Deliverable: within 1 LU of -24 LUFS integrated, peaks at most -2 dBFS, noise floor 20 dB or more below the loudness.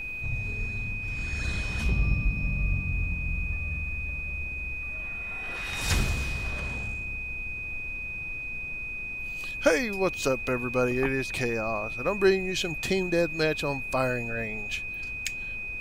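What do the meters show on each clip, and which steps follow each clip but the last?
steady tone 2500 Hz; tone level -33 dBFS; noise floor -35 dBFS; noise floor target -49 dBFS; loudness -29.0 LUFS; peak -10.0 dBFS; loudness target -24.0 LUFS
-> notch 2500 Hz, Q 30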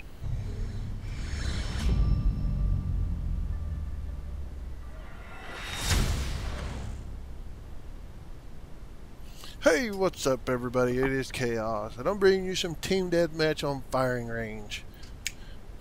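steady tone none; noise floor -44 dBFS; noise floor target -51 dBFS
-> noise print and reduce 7 dB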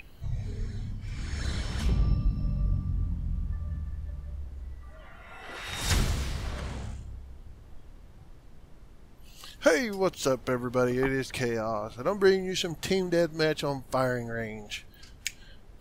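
noise floor -51 dBFS; loudness -30.5 LUFS; peak -10.5 dBFS; loudness target -24.0 LUFS
-> gain +6.5 dB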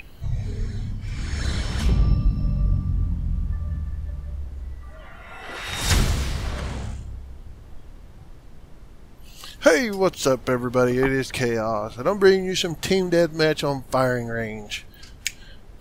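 loudness -24.0 LUFS; peak -4.0 dBFS; noise floor -44 dBFS

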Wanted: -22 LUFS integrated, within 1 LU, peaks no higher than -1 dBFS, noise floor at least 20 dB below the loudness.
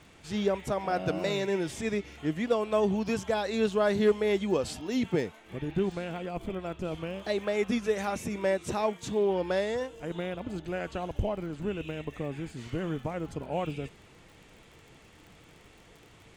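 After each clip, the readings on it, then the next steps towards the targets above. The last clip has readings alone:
ticks 34/s; loudness -31.0 LUFS; peak -16.0 dBFS; loudness target -22.0 LUFS
-> de-click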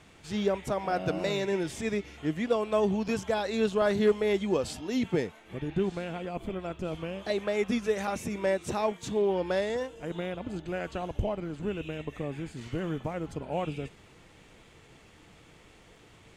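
ticks 0.061/s; loudness -31.0 LUFS; peak -15.5 dBFS; loudness target -22.0 LUFS
-> gain +9 dB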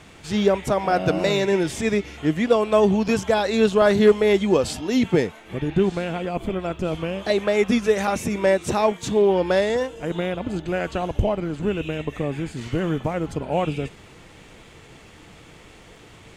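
loudness -22.0 LUFS; peak -6.5 dBFS; noise floor -47 dBFS

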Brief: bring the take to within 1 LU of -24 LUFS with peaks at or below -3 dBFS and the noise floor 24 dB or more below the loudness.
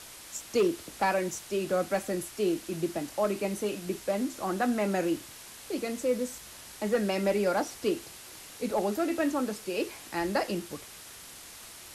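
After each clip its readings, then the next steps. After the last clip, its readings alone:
clipped 0.2%; flat tops at -19.0 dBFS; noise floor -48 dBFS; noise floor target -55 dBFS; loudness -30.5 LUFS; peak -19.0 dBFS; loudness target -24.0 LUFS
-> clip repair -19 dBFS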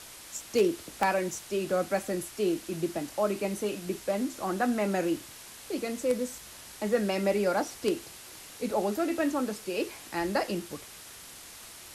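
clipped 0.0%; noise floor -48 dBFS; noise floor target -55 dBFS
-> denoiser 7 dB, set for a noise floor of -48 dBFS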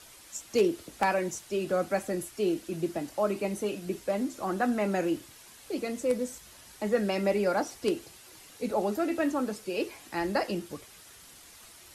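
noise floor -52 dBFS; noise floor target -55 dBFS
-> denoiser 6 dB, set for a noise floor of -52 dBFS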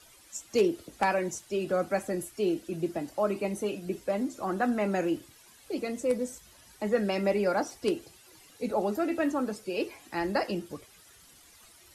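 noise floor -57 dBFS; loudness -30.5 LUFS; peak -10.5 dBFS; loudness target -24.0 LUFS
-> gain +6.5 dB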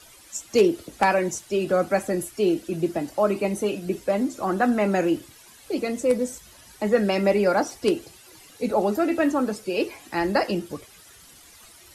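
loudness -24.0 LUFS; peak -4.0 dBFS; noise floor -50 dBFS

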